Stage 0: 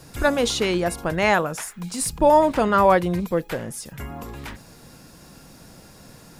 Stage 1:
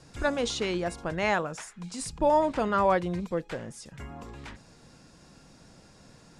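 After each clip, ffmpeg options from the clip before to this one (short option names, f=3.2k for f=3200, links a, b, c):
-af "lowpass=f=8.4k:w=0.5412,lowpass=f=8.4k:w=1.3066,volume=-7.5dB"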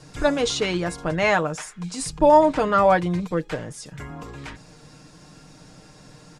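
-af "aecho=1:1:6.6:0.53,volume=5.5dB"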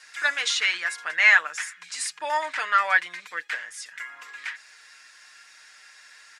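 -af "highpass=f=1.8k:t=q:w=3.4"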